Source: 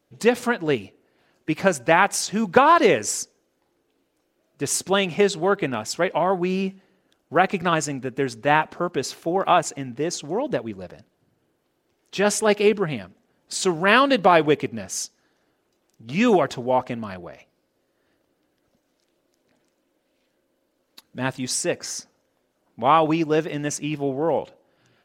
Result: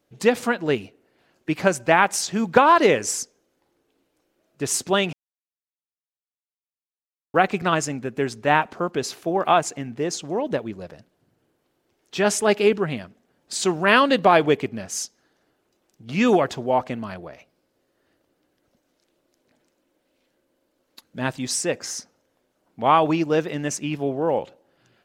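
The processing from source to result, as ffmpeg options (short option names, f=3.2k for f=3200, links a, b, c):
-filter_complex "[0:a]asplit=3[a][b][c];[a]atrim=end=5.13,asetpts=PTS-STARTPTS,afade=t=out:st=5.126:d=0.004:c=hsin[d];[b]atrim=start=5.13:end=7.34,asetpts=PTS-STARTPTS,volume=0[e];[c]atrim=start=7.34,asetpts=PTS-STARTPTS,afade=t=in:d=0.004:c=hsin[f];[d][e][f]concat=n=3:v=0:a=1"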